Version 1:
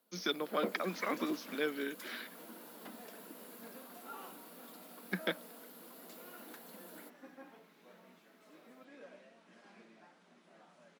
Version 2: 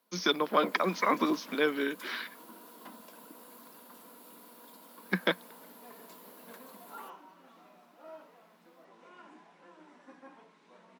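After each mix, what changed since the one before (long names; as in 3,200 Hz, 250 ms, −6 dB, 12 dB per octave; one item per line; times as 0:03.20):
speech +7.0 dB
second sound: entry +2.85 s
master: add parametric band 1,000 Hz +9.5 dB 0.29 octaves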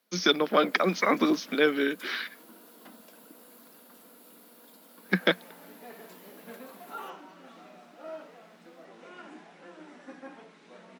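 speech +5.0 dB
second sound +8.5 dB
master: add parametric band 1,000 Hz −9.5 dB 0.29 octaves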